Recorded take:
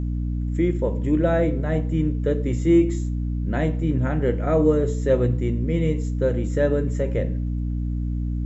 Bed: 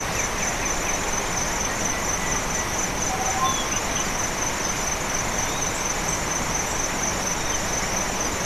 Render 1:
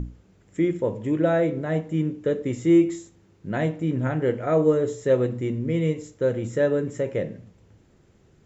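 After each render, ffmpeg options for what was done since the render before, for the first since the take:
-af "bandreject=f=60:t=h:w=6,bandreject=f=120:t=h:w=6,bandreject=f=180:t=h:w=6,bandreject=f=240:t=h:w=6,bandreject=f=300:t=h:w=6"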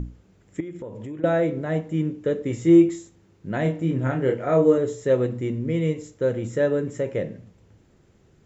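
-filter_complex "[0:a]asettb=1/sr,asplit=3[a][b][c];[a]atrim=end=0.604[d];[b]atrim=start=0.6:end=1.24,asetpts=PTS-STARTPTS,afade=t=in:d=0.004:c=qsin,afade=t=out:st=0.636:d=0.004:c=qsin,acompressor=threshold=-32dB:ratio=6:attack=3.2:release=140:knee=1:detection=peak[e];[c]atrim=start=1.236[f];[d][e]acrossfade=d=0.004:c1=hsin:c2=qsin[g];[g][f]acrossfade=d=0.004:c1=qsin:c2=hsin,asettb=1/sr,asplit=3[h][i][j];[h]atrim=end=2.494[k];[i]atrim=start=2.49:end=2.89,asetpts=PTS-STARTPTS,afade=t=in:d=0.004:c=qsin,afade=t=out:st=0.396:d=0.004:c=qsin,asplit=2[l][m];[m]adelay=18,volume=-7dB[n];[l][n]amix=inputs=2:normalize=0,atrim=end_sample=17640[o];[j]atrim=start=2.886[p];[k][o]acrossfade=d=0.004:c1=hsin:c2=qsin[q];[q][p]acrossfade=d=0.004:c1=qsin:c2=hsin,asettb=1/sr,asplit=3[r][s][t];[r]atrim=end=3.624[u];[s]atrim=start=3.62:end=4.78,asetpts=PTS-STARTPTS,afade=t=in:d=0.004:c=qsin,afade=t=out:st=1.156:d=0.004:c=qsin,asplit=2[v][w];[w]adelay=30,volume=-5.5dB[x];[v][x]amix=inputs=2:normalize=0,atrim=end_sample=51156[y];[t]atrim=start=4.776[z];[u][y]acrossfade=d=0.004:c1=hsin:c2=qsin[aa];[aa][z]acrossfade=d=0.004:c1=qsin:c2=hsin"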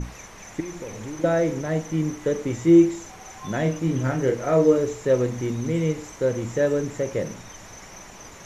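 -filter_complex "[1:a]volume=-18dB[a];[0:a][a]amix=inputs=2:normalize=0"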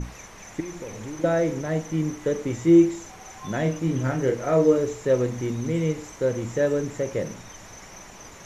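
-af "volume=-1dB"

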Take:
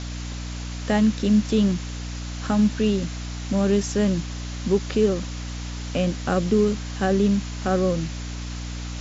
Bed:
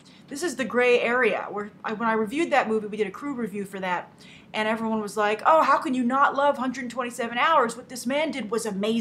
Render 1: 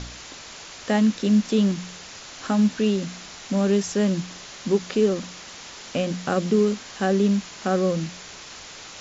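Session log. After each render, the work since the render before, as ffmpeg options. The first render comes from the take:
-af "bandreject=f=60:t=h:w=4,bandreject=f=120:t=h:w=4,bandreject=f=180:t=h:w=4,bandreject=f=240:t=h:w=4,bandreject=f=300:t=h:w=4"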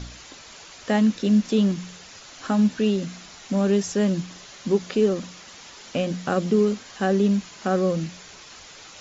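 -af "afftdn=nr=6:nf=-41"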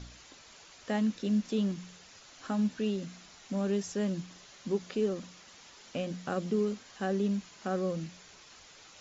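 -af "volume=-10dB"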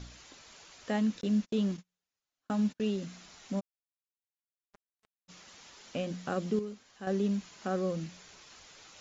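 -filter_complex "[0:a]asettb=1/sr,asplit=3[a][b][c];[a]atrim=end=1.214[d];[b]atrim=start=1.21:end=2.88,asetpts=PTS-STARTPTS,afade=t=in:d=0.004:c=qsin,afade=t=out:st=1.666:d=0.004:c=qsin,agate=range=-38dB:threshold=-41dB:ratio=16:release=100:detection=peak[e];[c]atrim=start=2.876[f];[d][e]acrossfade=d=0.004:c1=hsin:c2=qsin[g];[g][f]acrossfade=d=0.004:c1=qsin:c2=hsin,asplit=3[h][i][j];[h]afade=t=out:st=3.59:d=0.02[k];[i]acrusher=bits=2:mix=0:aa=0.5,afade=t=in:st=3.59:d=0.02,afade=t=out:st=5.28:d=0.02[l];[j]afade=t=in:st=5.28:d=0.02[m];[k][l][m]amix=inputs=3:normalize=0,asplit=3[n][o][p];[n]atrim=end=6.592[q];[o]atrim=start=6.588:end=7.072,asetpts=PTS-STARTPTS,volume=-8.5dB[r];[p]atrim=start=7.068[s];[q][r]acrossfade=d=0.004:c1=hsin:c2=hsin[t];[t][s]acrossfade=d=0.004:c1=hsin:c2=hsin"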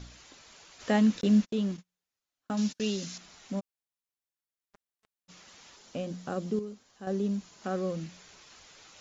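-filter_complex "[0:a]asplit=3[a][b][c];[a]afade=t=out:st=0.79:d=0.02[d];[b]acontrast=52,afade=t=in:st=0.79:d=0.02,afade=t=out:st=1.44:d=0.02[e];[c]afade=t=in:st=1.44:d=0.02[f];[d][e][f]amix=inputs=3:normalize=0,asettb=1/sr,asplit=3[g][h][i];[g]atrim=end=2.574[j];[h]atrim=start=2.57:end=3.18,asetpts=PTS-STARTPTS,afade=t=in:d=0.004:c=qsin,afade=t=out:st=0.606:d=0.004:c=qsin,equalizer=f=5.6k:t=o:w=1.7:g=14.5[k];[i]atrim=start=3.176[l];[j][k]acrossfade=d=0.004:c1=hsin:c2=qsin[m];[m][l]acrossfade=d=0.004:c1=qsin:c2=hsin,asettb=1/sr,asplit=3[n][o][p];[n]atrim=end=5.764[q];[o]atrim=start=5.76:end=7.64,asetpts=PTS-STARTPTS,afade=t=in:d=0.004:c=qsin,afade=t=out:st=1.876:d=0.004:c=qsin,equalizer=f=2.2k:w=0.8:g=-5.5[r];[p]atrim=start=7.636[s];[q][r]acrossfade=d=0.004:c1=hsin:c2=qsin[t];[t][s]acrossfade=d=0.004:c1=qsin:c2=hsin"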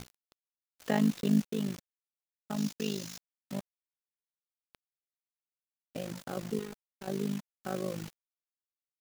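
-af "acrusher=bits=6:mix=0:aa=0.000001,tremolo=f=51:d=0.857"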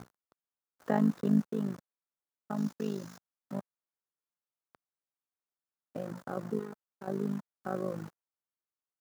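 -af "highpass=100,highshelf=f=1.9k:t=q:w=1.5:g=-11"

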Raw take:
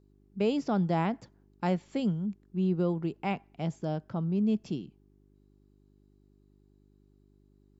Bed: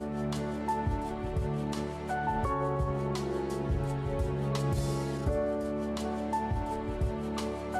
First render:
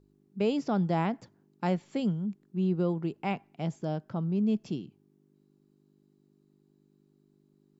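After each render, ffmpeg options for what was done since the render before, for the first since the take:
-af "bandreject=f=50:t=h:w=4,bandreject=f=100:t=h:w=4"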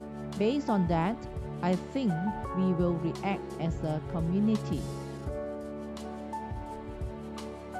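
-filter_complex "[1:a]volume=-6dB[a];[0:a][a]amix=inputs=2:normalize=0"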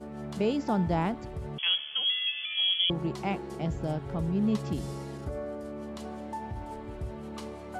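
-filter_complex "[0:a]asettb=1/sr,asplit=3[a][b][c];[a]atrim=end=1.584[d];[b]atrim=start=1.58:end=2.9,asetpts=PTS-STARTPTS,afade=t=in:d=0.004:c=qsin,afade=t=out:st=1.316:d=0.004:c=qsin,lowpass=f=3k:t=q:w=0.5098,lowpass=f=3k:t=q:w=0.6013,lowpass=f=3k:t=q:w=0.9,lowpass=f=3k:t=q:w=2.563,afreqshift=-3500[e];[c]atrim=start=2.896[f];[d][e]acrossfade=d=0.004:c1=hsin:c2=qsin[g];[g][f]acrossfade=d=0.004:c1=qsin:c2=hsin"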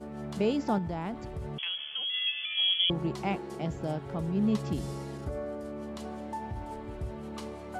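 -filter_complex "[0:a]asettb=1/sr,asplit=3[a][b][c];[a]atrim=end=0.784[d];[b]atrim=start=0.78:end=2.14,asetpts=PTS-STARTPTS,afade=t=in:d=0.004:c=qsin,afade=t=out:st=1.356:d=0.004:c=qsin,acompressor=threshold=-31dB:ratio=4:attack=3.2:release=140:knee=1:detection=peak[e];[c]atrim=start=2.136[f];[d][e]acrossfade=d=0.004:c1=hsin:c2=qsin[g];[g][f]acrossfade=d=0.004:c1=qsin:c2=hsin,asettb=1/sr,asplit=3[h][i][j];[h]atrim=end=3.364[k];[i]atrim=start=3.36:end=4.37,asetpts=PTS-STARTPTS,afade=t=in:d=0.004:c=qsin,afade=t=out:st=1.006:d=0.004:c=qsin,highpass=f=140:p=1[l];[j]atrim=start=4.366[m];[k][l]acrossfade=d=0.004:c1=hsin:c2=qsin[n];[n][m]acrossfade=d=0.004:c1=qsin:c2=hsin"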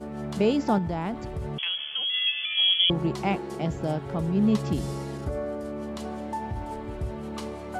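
-af "volume=5dB"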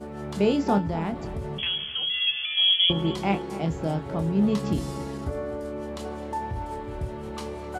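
-filter_complex "[0:a]asplit=2[a][b];[b]adelay=25,volume=-8dB[c];[a][c]amix=inputs=2:normalize=0,asplit=2[d][e];[e]adelay=259,lowpass=f=2k:p=1,volume=-14dB,asplit=2[f][g];[g]adelay=259,lowpass=f=2k:p=1,volume=0.41,asplit=2[h][i];[i]adelay=259,lowpass=f=2k:p=1,volume=0.41,asplit=2[j][k];[k]adelay=259,lowpass=f=2k:p=1,volume=0.41[l];[d][f][h][j][l]amix=inputs=5:normalize=0"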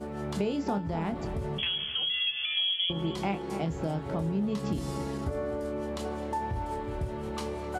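-af "acompressor=threshold=-27dB:ratio=5"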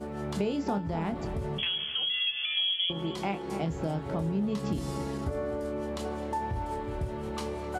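-filter_complex "[0:a]asettb=1/sr,asplit=3[a][b][c];[a]atrim=end=1.634[d];[b]atrim=start=1.63:end=3.46,asetpts=PTS-STARTPTS,afade=t=in:d=0.004:c=qsin,afade=t=out:st=1.826:d=0.004:c=qsin,lowshelf=f=130:g=-8.5[e];[c]atrim=start=3.456[f];[d][e]acrossfade=d=0.004:c1=hsin:c2=qsin[g];[g][f]acrossfade=d=0.004:c1=qsin:c2=hsin"

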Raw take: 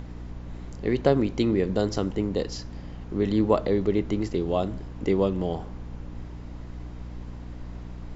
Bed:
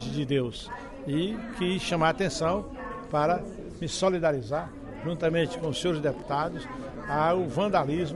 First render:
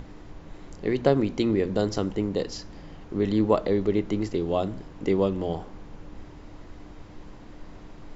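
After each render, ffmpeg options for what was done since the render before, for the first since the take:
-af "bandreject=f=60:t=h:w=6,bandreject=f=120:t=h:w=6,bandreject=f=180:t=h:w=6,bandreject=f=240:t=h:w=6"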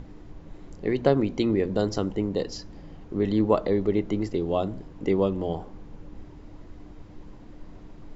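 -af "afftdn=nr=6:nf=-45"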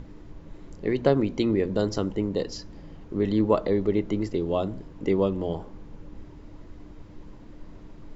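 -af "bandreject=f=750:w=12"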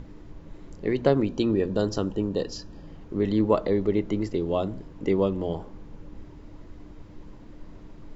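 -filter_complex "[0:a]asettb=1/sr,asplit=3[a][b][c];[a]atrim=end=1.264[d];[b]atrim=start=1.26:end=2.87,asetpts=PTS-STARTPTS,afade=t=in:d=0.004:c=qsin,afade=t=out:st=1.606:d=0.004:c=qsin,asuperstop=centerf=2100:order=12:qfactor=5.7[e];[c]atrim=start=2.866[f];[d][e]acrossfade=d=0.004:c1=hsin:c2=qsin[g];[g][f]acrossfade=d=0.004:c1=qsin:c2=hsin"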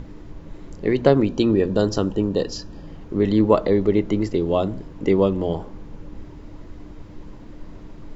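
-af "volume=5.5dB"

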